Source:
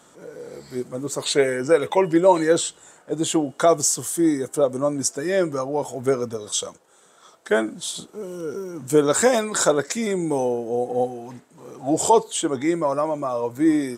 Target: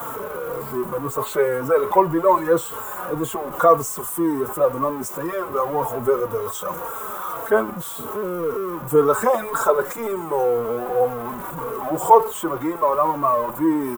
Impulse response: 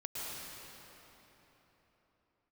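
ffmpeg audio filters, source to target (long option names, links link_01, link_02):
-filter_complex "[0:a]aeval=exprs='val(0)+0.5*0.0596*sgn(val(0))':channel_layout=same,firequalizer=gain_entry='entry(110,0);entry(200,-4);entry(290,-8);entry(430,-1);entry(680,-1);entry(1100,13);entry(1800,-4);entry(3100,-8);entry(4500,-16);entry(14000,9)':delay=0.05:min_phase=1,acrossover=split=190|590|2500[link_01][link_02][link_03][link_04];[link_02]acontrast=79[link_05];[link_01][link_05][link_03][link_04]amix=inputs=4:normalize=0,asplit=2[link_06][link_07];[link_07]adelay=3.8,afreqshift=-1.9[link_08];[link_06][link_08]amix=inputs=2:normalize=1,volume=-1.5dB"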